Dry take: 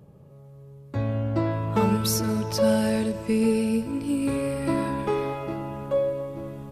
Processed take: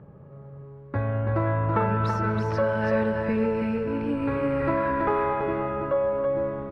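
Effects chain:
dynamic equaliser 240 Hz, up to −7 dB, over −36 dBFS, Q 1.2
downward compressor, threshold −25 dBFS, peak gain reduction 6.5 dB
low-pass with resonance 1,600 Hz, resonance Q 2
single-tap delay 330 ms −4.5 dB
level +3 dB

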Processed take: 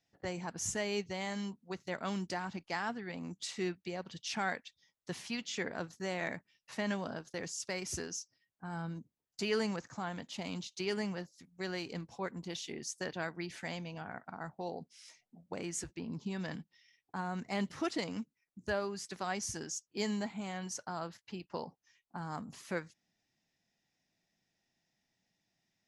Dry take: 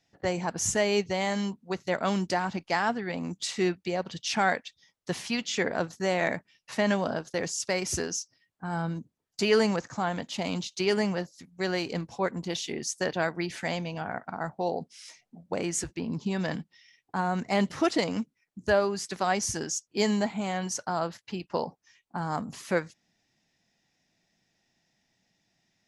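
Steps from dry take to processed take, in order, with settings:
dynamic equaliser 610 Hz, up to −4 dB, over −38 dBFS, Q 1.3
level −8.5 dB

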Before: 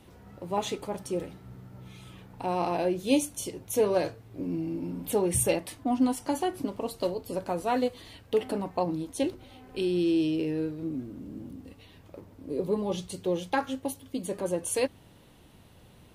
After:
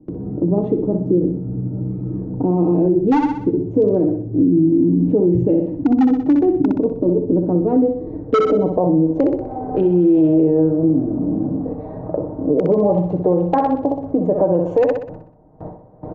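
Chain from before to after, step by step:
adaptive Wiener filter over 15 samples
in parallel at −1 dB: downward compressor 12 to 1, threshold −37 dBFS, peak gain reduction 19 dB
on the sum: low-pass filter sweep 320 Hz → 700 Hz, 0:07.68–0:09.51
noise gate with hold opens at −39 dBFS
comb filter 6.5 ms, depth 49%
wave folding −12.5 dBFS
downsampling to 16,000 Hz
on a send: flutter between parallel walls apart 10.7 metres, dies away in 0.51 s
on the sum: boost into a limiter +17.5 dB
multiband upward and downward compressor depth 40%
level −6.5 dB

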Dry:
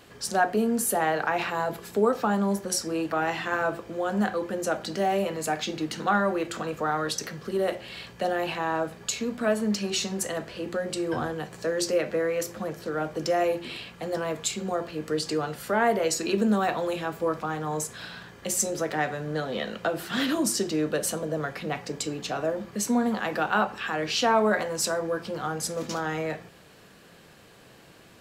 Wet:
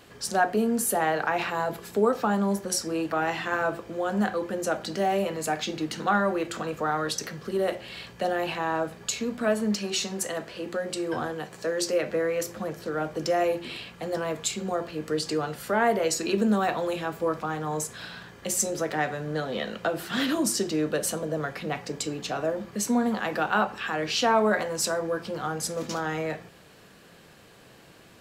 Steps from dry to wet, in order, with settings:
0:09.75–0:12.03: low-shelf EQ 140 Hz −8.5 dB

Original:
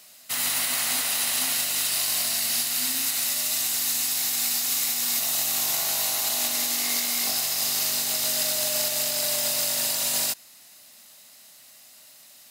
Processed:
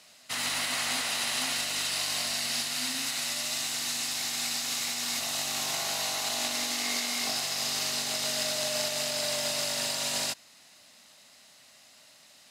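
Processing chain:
high-frequency loss of the air 64 metres

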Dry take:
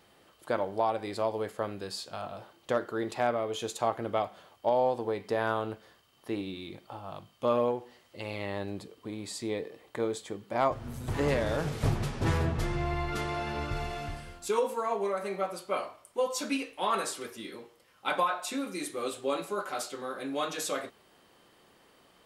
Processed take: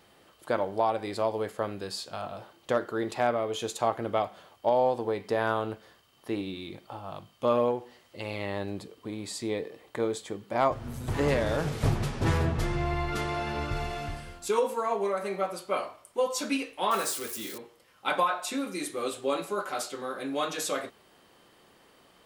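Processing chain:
0:16.91–0:17.58: spike at every zero crossing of −33 dBFS
level +2 dB

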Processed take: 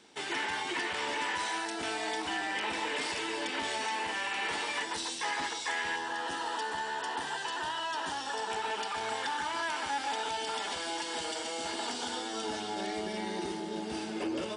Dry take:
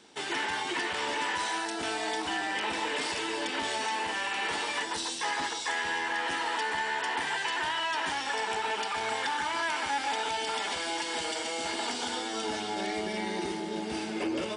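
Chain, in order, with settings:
parametric band 2,200 Hz +2 dB 0.39 octaves, from 0:05.96 −14 dB, from 0:08.50 −4.5 dB
level −2.5 dB

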